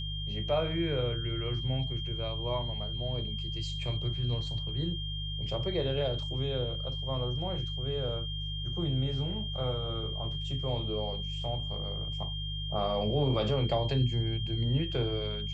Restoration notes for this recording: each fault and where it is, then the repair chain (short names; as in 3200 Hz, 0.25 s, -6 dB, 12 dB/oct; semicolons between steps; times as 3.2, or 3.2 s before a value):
hum 50 Hz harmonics 3 -37 dBFS
tone 3200 Hz -38 dBFS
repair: notch 3200 Hz, Q 30; de-hum 50 Hz, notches 3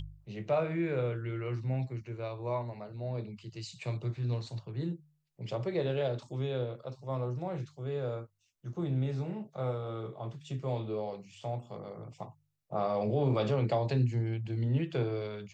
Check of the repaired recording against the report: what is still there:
none